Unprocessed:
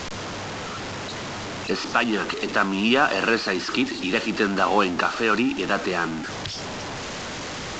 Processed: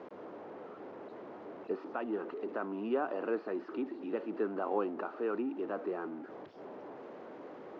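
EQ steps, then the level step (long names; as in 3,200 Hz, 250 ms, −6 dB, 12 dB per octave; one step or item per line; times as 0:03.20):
four-pole ladder band-pass 460 Hz, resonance 30%
0.0 dB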